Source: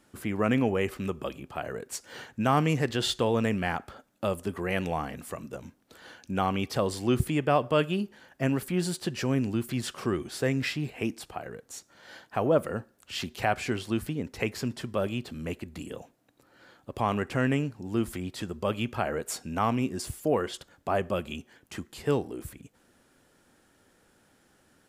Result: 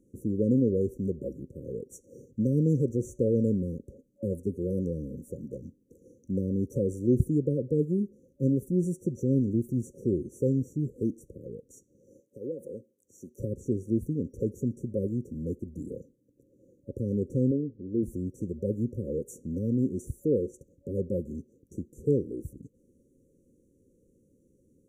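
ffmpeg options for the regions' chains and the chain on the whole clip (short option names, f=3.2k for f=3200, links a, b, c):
-filter_complex "[0:a]asettb=1/sr,asplit=3[a][b][c];[a]atrim=end=12.204[d];[b]atrim=start=12.2:end=13.39,asetpts=PTS-STARTPTS,afade=t=in:d=0.004:c=qsin,afade=t=out:st=1.186:d=0.004:c=qsin,highpass=f=730:p=1,acompressor=threshold=-30dB:ratio=4:attack=3.2:release=140:knee=1:detection=peak[e];[c]atrim=start=13.386[f];[d][e]acrossfade=d=0.004:c1=hsin:c2=qsin[g];[g][f]acrossfade=d=0.004:c1=qsin:c2=hsin,asettb=1/sr,asplit=3[h][i][j];[h]atrim=end=17.514[k];[i]atrim=start=17.51:end=18.03,asetpts=PTS-STARTPTS,afade=t=in:d=0.004:c=qsin,afade=t=out:st=0.516:d=0.004:c=qsin,lowpass=2.5k,equalizer=f=130:t=o:w=1.2:g=-8.5[l];[j]atrim=start=18.026[m];[k][l]acrossfade=d=0.004:c1=hsin:c2=qsin[n];[n][m]acrossfade=d=0.004:c1=qsin:c2=hsin,afftfilt=real='re*(1-between(b*sr/4096,560,5700))':imag='im*(1-between(b*sr/4096,560,5700))':win_size=4096:overlap=0.75,tiltshelf=f=1.4k:g=7,volume=-4.5dB"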